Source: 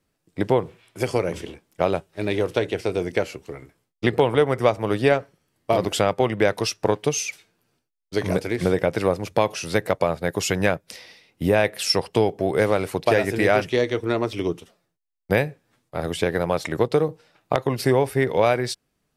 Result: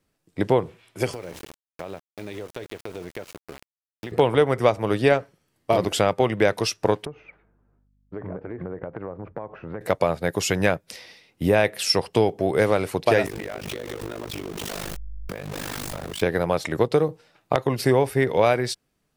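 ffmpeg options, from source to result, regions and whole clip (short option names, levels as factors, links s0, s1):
-filter_complex "[0:a]asettb=1/sr,asplit=3[s0][s1][s2];[s0]atrim=end=1.134[s3];[s1]atrim=start=1.13:end=4.12,asetpts=PTS-STARTPTS,afade=t=in:d=0.004:c=qsin,afade=t=out:st=2.986:d=0.004:c=qsin,aeval=exprs='val(0)*gte(abs(val(0)),0.0266)':c=same,acompressor=threshold=0.0224:ratio=4:attack=3.2:release=140:knee=1:detection=peak[s4];[s2]atrim=start=4.116[s5];[s3][s4]acrossfade=d=0.004:c1=hsin:c2=qsin[s6];[s6][s5]acrossfade=d=0.004:c1=qsin:c2=hsin,asettb=1/sr,asplit=3[s7][s8][s9];[s7]atrim=end=7.054[s10];[s8]atrim=start=7.05:end=9.81,asetpts=PTS-STARTPTS,afade=t=in:d=0.004:c=qsin,afade=t=out:st=2.756:d=0.004:c=qsin,lowpass=f=1500:w=0.5412,lowpass=f=1500:w=1.3066,acompressor=threshold=0.0316:ratio=5:attack=3.2:release=140:knee=1:detection=peak,aeval=exprs='val(0)+0.000631*(sin(2*PI*50*n/s)+sin(2*PI*2*50*n/s)/2+sin(2*PI*3*50*n/s)/3+sin(2*PI*4*50*n/s)/4+sin(2*PI*5*50*n/s)/5)':c=same[s11];[s9]atrim=start=9.806[s12];[s10][s11]acrossfade=d=0.004:c1=hsin:c2=qsin[s13];[s13][s12]acrossfade=d=0.004:c1=qsin:c2=hsin,asettb=1/sr,asplit=3[s14][s15][s16];[s14]atrim=end=13.264[s17];[s15]atrim=start=13.26:end=16.22,asetpts=PTS-STARTPTS,afade=t=in:d=0.004:c=qsin,afade=t=out:st=2.956:d=0.004:c=qsin,aeval=exprs='val(0)+0.5*0.0841*sgn(val(0))':c=same,tremolo=f=50:d=0.974,acompressor=threshold=0.0355:ratio=10:attack=3.2:release=140:knee=1:detection=peak[s18];[s16]atrim=start=16.216[s19];[s17][s18]acrossfade=d=0.004:c1=hsin:c2=qsin[s20];[s20][s19]acrossfade=d=0.004:c1=qsin:c2=hsin"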